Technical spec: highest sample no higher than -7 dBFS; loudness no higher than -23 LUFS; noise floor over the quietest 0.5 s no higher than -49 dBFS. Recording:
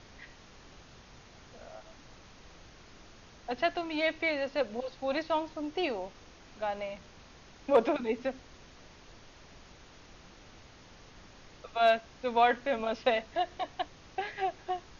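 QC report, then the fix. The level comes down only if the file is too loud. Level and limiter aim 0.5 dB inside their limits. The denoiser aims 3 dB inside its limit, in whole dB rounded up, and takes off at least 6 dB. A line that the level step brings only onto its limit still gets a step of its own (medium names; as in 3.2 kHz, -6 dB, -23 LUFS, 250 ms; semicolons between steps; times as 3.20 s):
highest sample -13.0 dBFS: pass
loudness -31.5 LUFS: pass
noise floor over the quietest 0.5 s -54 dBFS: pass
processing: none needed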